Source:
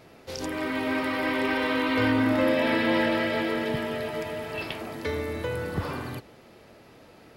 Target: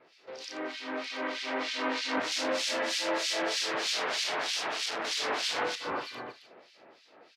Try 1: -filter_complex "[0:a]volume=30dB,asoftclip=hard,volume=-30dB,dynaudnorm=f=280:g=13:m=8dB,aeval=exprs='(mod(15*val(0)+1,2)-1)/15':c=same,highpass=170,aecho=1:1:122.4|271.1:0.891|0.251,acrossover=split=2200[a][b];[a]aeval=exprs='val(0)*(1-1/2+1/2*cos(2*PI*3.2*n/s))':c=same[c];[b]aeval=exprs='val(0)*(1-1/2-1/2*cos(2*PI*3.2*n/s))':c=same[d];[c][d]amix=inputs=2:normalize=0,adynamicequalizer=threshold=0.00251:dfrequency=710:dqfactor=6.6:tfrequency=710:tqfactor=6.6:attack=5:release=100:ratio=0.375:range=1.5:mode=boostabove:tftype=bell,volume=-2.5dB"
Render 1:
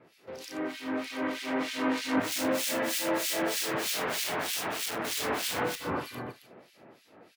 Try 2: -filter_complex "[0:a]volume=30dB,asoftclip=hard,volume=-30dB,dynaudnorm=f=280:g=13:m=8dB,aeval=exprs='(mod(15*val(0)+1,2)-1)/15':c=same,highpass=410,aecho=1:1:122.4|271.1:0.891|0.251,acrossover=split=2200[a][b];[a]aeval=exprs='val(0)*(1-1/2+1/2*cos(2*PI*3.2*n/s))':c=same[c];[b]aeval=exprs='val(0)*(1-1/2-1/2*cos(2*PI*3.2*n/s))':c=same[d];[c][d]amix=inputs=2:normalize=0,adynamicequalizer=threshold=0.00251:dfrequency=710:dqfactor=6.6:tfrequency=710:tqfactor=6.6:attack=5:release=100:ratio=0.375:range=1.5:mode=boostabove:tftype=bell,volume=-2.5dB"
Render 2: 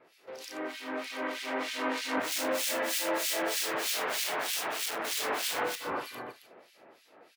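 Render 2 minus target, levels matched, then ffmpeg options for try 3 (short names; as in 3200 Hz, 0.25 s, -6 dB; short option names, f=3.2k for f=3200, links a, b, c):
4000 Hz band -3.0 dB
-filter_complex "[0:a]volume=30dB,asoftclip=hard,volume=-30dB,dynaudnorm=f=280:g=13:m=8dB,aeval=exprs='(mod(15*val(0)+1,2)-1)/15':c=same,highpass=410,aecho=1:1:122.4|271.1:0.891|0.251,acrossover=split=2200[a][b];[a]aeval=exprs='val(0)*(1-1/2+1/2*cos(2*PI*3.2*n/s))':c=same[c];[b]aeval=exprs='val(0)*(1-1/2-1/2*cos(2*PI*3.2*n/s))':c=same[d];[c][d]amix=inputs=2:normalize=0,adynamicequalizer=threshold=0.00251:dfrequency=710:dqfactor=6.6:tfrequency=710:tqfactor=6.6:attack=5:release=100:ratio=0.375:range=1.5:mode=boostabove:tftype=bell,lowpass=f=5k:t=q:w=1.6,volume=-2.5dB"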